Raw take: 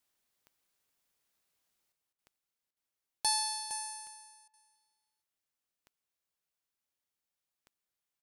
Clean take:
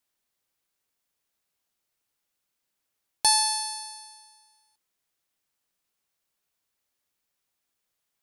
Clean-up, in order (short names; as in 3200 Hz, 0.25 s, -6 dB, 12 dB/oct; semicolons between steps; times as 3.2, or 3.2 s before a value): de-click; interpolate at 2.13/2.71/4.48, 55 ms; inverse comb 0.462 s -10 dB; gain correction +9.5 dB, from 1.92